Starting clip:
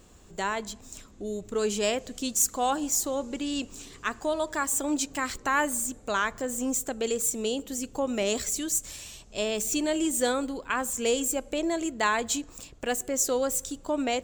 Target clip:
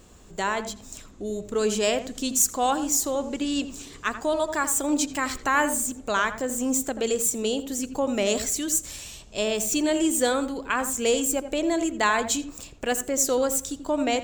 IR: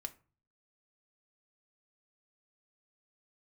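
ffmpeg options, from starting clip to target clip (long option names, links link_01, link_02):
-filter_complex "[0:a]asplit=2[link_01][link_02];[link_02]lowpass=frequency=1700:poles=1[link_03];[1:a]atrim=start_sample=2205,adelay=84[link_04];[link_03][link_04]afir=irnorm=-1:irlink=0,volume=-7dB[link_05];[link_01][link_05]amix=inputs=2:normalize=0,volume=3dB"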